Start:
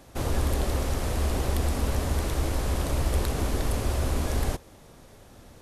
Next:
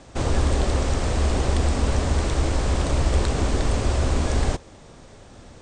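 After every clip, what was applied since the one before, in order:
Butterworth low-pass 8,900 Hz 96 dB per octave
level +5 dB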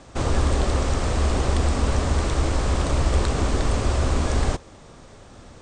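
parametric band 1,200 Hz +3.5 dB 0.45 octaves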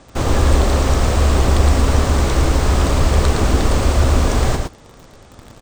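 in parallel at −4 dB: bit-depth reduction 6 bits, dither none
on the sum: single-tap delay 112 ms −4.5 dB
level +1 dB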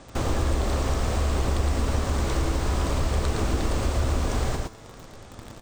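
downward compressor 2 to 1, threshold −26 dBFS, peak gain reduction 10.5 dB
tuned comb filter 110 Hz, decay 1.8 s, mix 60%
level +6 dB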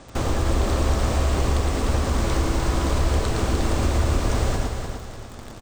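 repeating echo 300 ms, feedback 37%, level −6 dB
level +2 dB

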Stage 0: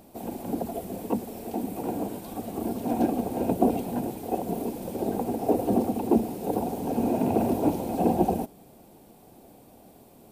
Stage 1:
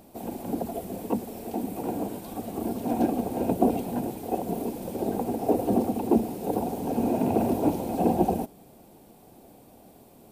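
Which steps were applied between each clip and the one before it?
no processing that can be heard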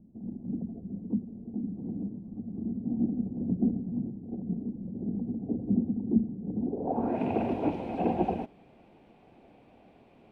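low-pass filter sweep 200 Hz → 2,500 Hz, 0:06.57–0:07.21
level −5 dB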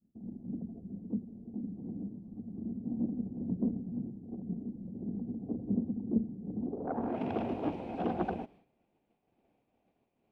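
phase distortion by the signal itself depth 0.25 ms
downward expander −47 dBFS
level −5 dB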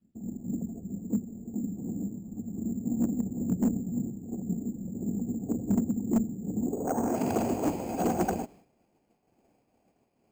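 asymmetric clip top −26.5 dBFS, bottom −23.5 dBFS
bad sample-rate conversion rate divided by 6×, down filtered, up hold
level +6 dB

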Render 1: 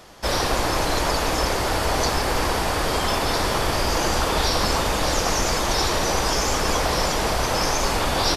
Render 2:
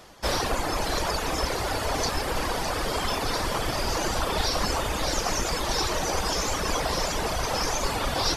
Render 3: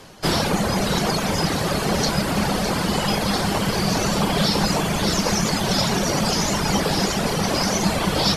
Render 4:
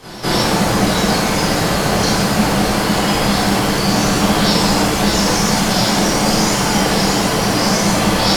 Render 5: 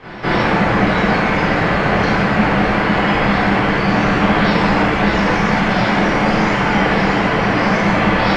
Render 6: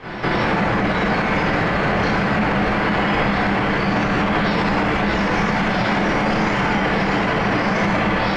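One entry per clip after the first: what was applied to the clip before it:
reverb reduction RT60 1.8 s; echo with a time of its own for lows and highs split 1,800 Hz, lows 214 ms, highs 609 ms, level −8 dB; level −2.5 dB
frequency shifter −220 Hz; level +5.5 dB
backwards echo 205 ms −17 dB; reverb with rising layers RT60 1.3 s, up +7 semitones, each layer −8 dB, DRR −4.5 dB
low-pass with resonance 2,100 Hz, resonance Q 1.8
brickwall limiter −12.5 dBFS, peak gain reduction 10.5 dB; level +2 dB

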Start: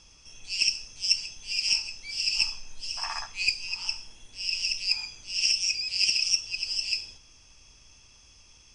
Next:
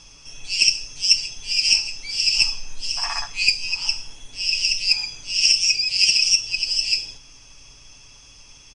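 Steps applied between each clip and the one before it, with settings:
comb filter 7.1 ms, depth 49%
dynamic equaliser 1,200 Hz, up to −4 dB, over −44 dBFS, Q 1.1
level +7.5 dB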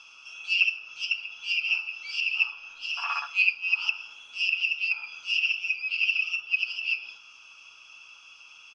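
treble cut that deepens with the level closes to 1,900 Hz, closed at −17.5 dBFS
pair of resonant band-passes 1,900 Hz, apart 0.99 octaves
level +8 dB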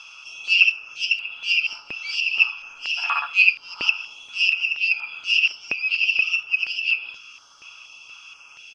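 notch on a step sequencer 4.2 Hz 320–5,900 Hz
level +7.5 dB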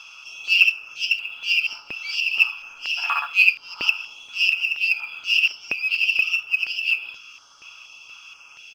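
floating-point word with a short mantissa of 4 bits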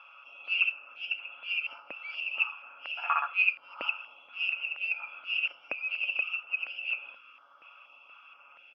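loudspeaker in its box 380–2,000 Hz, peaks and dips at 400 Hz −10 dB, 560 Hz +6 dB, 960 Hz −4 dB, 1,800 Hz −6 dB

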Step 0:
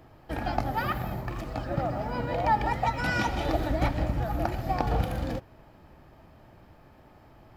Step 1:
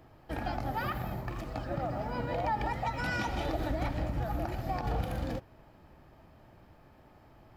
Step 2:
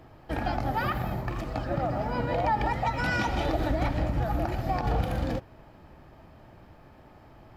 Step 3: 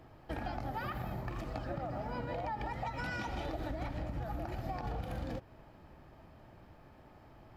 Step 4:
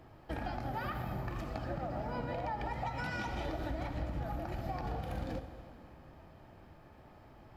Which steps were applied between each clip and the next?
brickwall limiter −19.5 dBFS, peak gain reduction 9.5 dB; level −3.5 dB
high-shelf EQ 8,500 Hz −5.5 dB; level +5.5 dB
downward compressor, threshold −30 dBFS, peak gain reduction 8.5 dB; level −5 dB
dense smooth reverb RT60 2.5 s, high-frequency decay 0.85×, DRR 8 dB

